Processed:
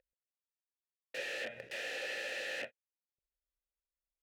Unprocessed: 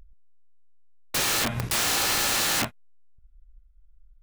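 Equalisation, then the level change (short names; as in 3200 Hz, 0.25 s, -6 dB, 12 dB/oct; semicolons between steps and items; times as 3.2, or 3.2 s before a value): vowel filter e; low shelf 450 Hz -4.5 dB; 0.0 dB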